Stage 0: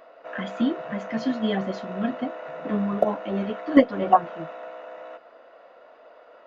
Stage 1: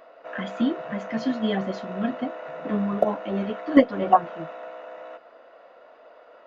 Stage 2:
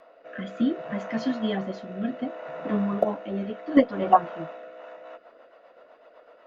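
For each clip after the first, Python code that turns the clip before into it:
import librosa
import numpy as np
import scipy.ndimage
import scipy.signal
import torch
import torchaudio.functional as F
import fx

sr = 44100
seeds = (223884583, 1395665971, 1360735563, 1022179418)

y1 = x
y2 = fx.rotary_switch(y1, sr, hz=0.65, then_hz=8.0, switch_at_s=4.49)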